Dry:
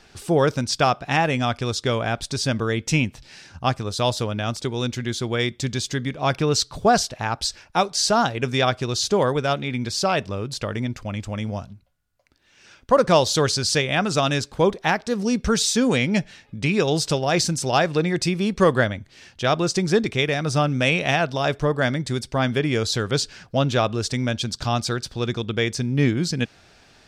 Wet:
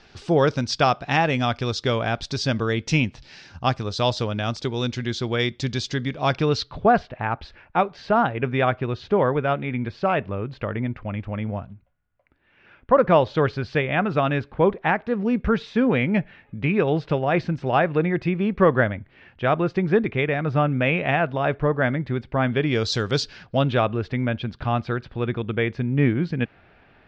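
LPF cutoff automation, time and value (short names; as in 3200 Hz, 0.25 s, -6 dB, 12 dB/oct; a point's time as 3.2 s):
LPF 24 dB/oct
6.35 s 5500 Hz
6.93 s 2500 Hz
22.43 s 2500 Hz
22.99 s 6600 Hz
23.98 s 2600 Hz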